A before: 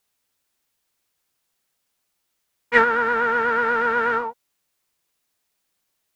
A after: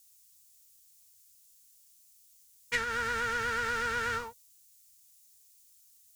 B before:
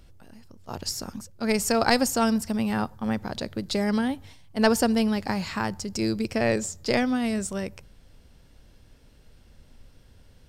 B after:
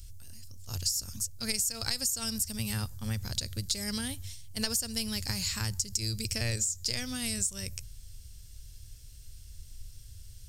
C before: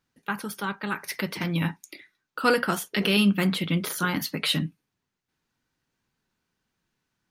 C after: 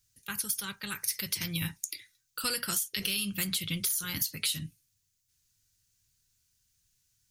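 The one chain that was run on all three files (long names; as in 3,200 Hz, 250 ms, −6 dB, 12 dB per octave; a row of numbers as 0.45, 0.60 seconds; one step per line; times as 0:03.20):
drawn EQ curve 110 Hz 0 dB, 170 Hz −15 dB, 260 Hz −20 dB, 530 Hz −20 dB, 780 Hz −24 dB, 3,700 Hz −3 dB, 6,800 Hz +8 dB
in parallel at +1 dB: brickwall limiter −20 dBFS
on the sum: downward compressor 12 to 1, threshold −27 dBFS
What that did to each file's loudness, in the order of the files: −12.0, −5.5, −5.5 LU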